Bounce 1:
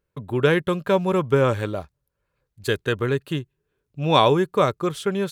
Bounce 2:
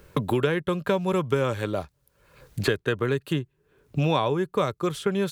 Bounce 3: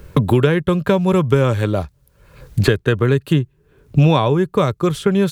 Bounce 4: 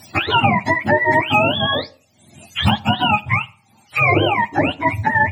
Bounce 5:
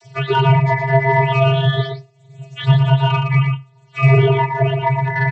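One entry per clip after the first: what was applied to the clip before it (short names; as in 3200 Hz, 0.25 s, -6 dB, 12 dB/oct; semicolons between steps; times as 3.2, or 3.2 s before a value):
three-band squash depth 100%; gain -4 dB
low shelf 190 Hz +10.5 dB; gain +6 dB
spectrum mirrored in octaves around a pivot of 590 Hz; on a send at -20 dB: reverb RT60 0.45 s, pre-delay 39 ms; on the sum: gain +2 dB
soft clip -8 dBFS, distortion -18 dB; vocoder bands 32, square 134 Hz; echo 0.117 s -5 dB; gain +4.5 dB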